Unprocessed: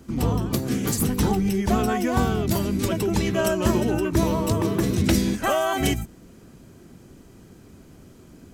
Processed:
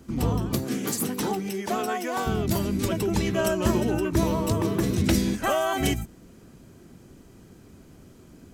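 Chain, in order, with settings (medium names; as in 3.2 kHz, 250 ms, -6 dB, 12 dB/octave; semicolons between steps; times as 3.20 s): 0.64–2.25 s: high-pass 180 Hz -> 460 Hz 12 dB/octave; trim -2 dB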